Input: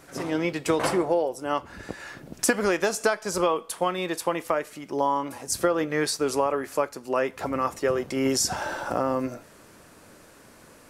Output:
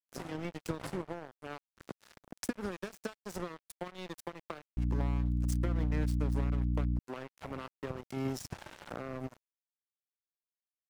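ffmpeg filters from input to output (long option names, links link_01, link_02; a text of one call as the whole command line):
ffmpeg -i in.wav -filter_complex "[0:a]acrossover=split=200[link_01][link_02];[link_02]acompressor=threshold=-39dB:ratio=5[link_03];[link_01][link_03]amix=inputs=2:normalize=0,aeval=exprs='sgn(val(0))*max(abs(val(0))-0.0133,0)':channel_layout=same,asettb=1/sr,asplit=3[link_04][link_05][link_06];[link_04]atrim=end=4.774[link_07];[link_05]atrim=start=4.77:end=6.99,asetpts=PTS-STARTPTS,afade=type=in:duration=0.004:curve=qsin,afade=type=out:start_time=2.216:duration=0.004:curve=qsin,aeval=exprs='val(0)+0.0282*(sin(2*PI*60*n/s)+sin(2*PI*2*60*n/s)/2+sin(2*PI*3*60*n/s)/3+sin(2*PI*4*60*n/s)/4+sin(2*PI*5*60*n/s)/5)':channel_layout=same[link_08];[link_06]atrim=start=6.986[link_09];[link_07][link_08]acrossfade=duration=0.004:curve1=hsin:curve2=qsin[link_10];[link_10][link_09]acrossfade=duration=0.004:curve1=qsin:curve2=hsin,volume=2dB" out.wav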